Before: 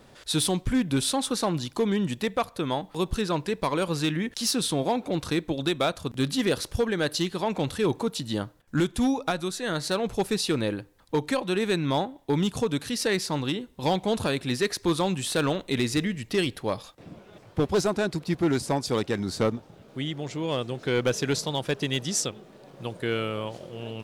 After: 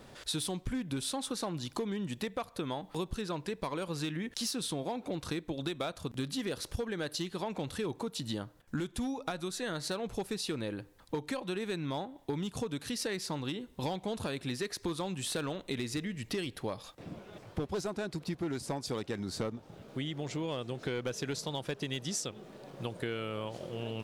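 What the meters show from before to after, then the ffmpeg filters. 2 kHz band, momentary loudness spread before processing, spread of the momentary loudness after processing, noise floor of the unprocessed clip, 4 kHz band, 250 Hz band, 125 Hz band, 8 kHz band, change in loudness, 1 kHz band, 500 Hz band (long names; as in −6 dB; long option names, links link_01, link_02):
−9.5 dB, 7 LU, 5 LU, −54 dBFS, −8.5 dB, −9.5 dB, −9.0 dB, −8.0 dB, −9.5 dB, −10.0 dB, −10.0 dB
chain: -af "acompressor=threshold=-33dB:ratio=6"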